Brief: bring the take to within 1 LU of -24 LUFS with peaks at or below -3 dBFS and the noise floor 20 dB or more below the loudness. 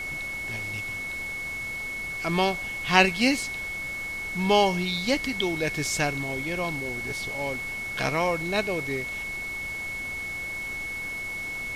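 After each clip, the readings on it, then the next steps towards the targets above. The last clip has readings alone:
steady tone 2.2 kHz; tone level -31 dBFS; noise floor -34 dBFS; noise floor target -47 dBFS; loudness -27.0 LUFS; peak level -1.5 dBFS; loudness target -24.0 LUFS
-> band-stop 2.2 kHz, Q 30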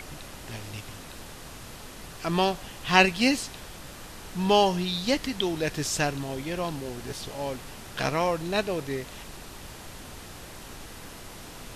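steady tone not found; noise floor -44 dBFS; noise floor target -47 dBFS
-> noise print and reduce 6 dB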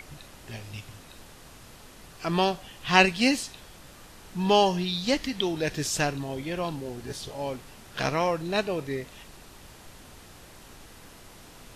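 noise floor -50 dBFS; loudness -27.0 LUFS; peak level -2.0 dBFS; loudness target -24.0 LUFS
-> trim +3 dB; peak limiter -3 dBFS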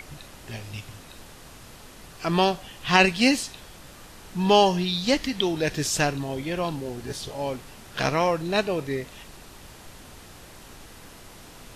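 loudness -24.0 LUFS; peak level -3.0 dBFS; noise floor -47 dBFS

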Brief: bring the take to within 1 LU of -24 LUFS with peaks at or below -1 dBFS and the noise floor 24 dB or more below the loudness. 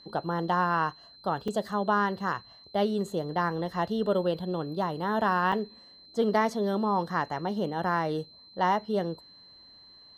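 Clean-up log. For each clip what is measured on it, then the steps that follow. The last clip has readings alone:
dropouts 2; longest dropout 4.4 ms; steady tone 4.1 kHz; tone level -51 dBFS; loudness -29.0 LUFS; peak level -13.0 dBFS; loudness target -24.0 LUFS
-> interpolate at 1.48/5.52 s, 4.4 ms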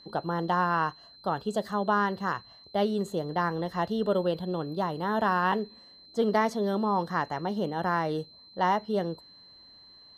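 dropouts 0; steady tone 4.1 kHz; tone level -51 dBFS
-> band-stop 4.1 kHz, Q 30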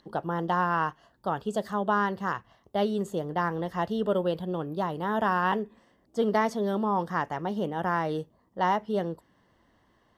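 steady tone not found; loudness -29.0 LUFS; peak level -13.0 dBFS; loudness target -24.0 LUFS
-> trim +5 dB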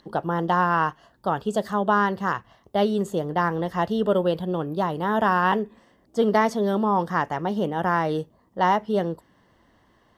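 loudness -24.0 LUFS; peak level -8.0 dBFS; noise floor -62 dBFS

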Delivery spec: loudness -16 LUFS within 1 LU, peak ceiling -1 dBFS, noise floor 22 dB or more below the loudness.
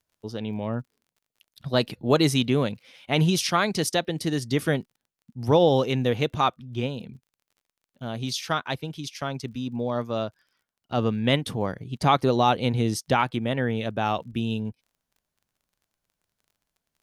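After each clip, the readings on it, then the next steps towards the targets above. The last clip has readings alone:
tick rate 33 per s; loudness -25.5 LUFS; peak level -8.0 dBFS; loudness target -16.0 LUFS
-> de-click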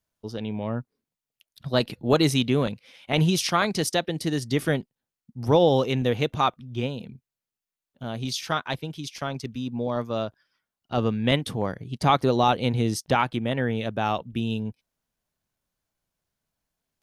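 tick rate 0.18 per s; loudness -25.5 LUFS; peak level -7.5 dBFS; loudness target -16.0 LUFS
-> trim +9.5 dB; peak limiter -1 dBFS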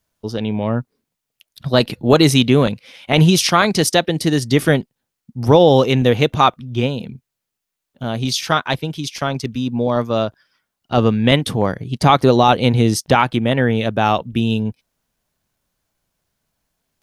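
loudness -16.5 LUFS; peak level -1.0 dBFS; noise floor -81 dBFS

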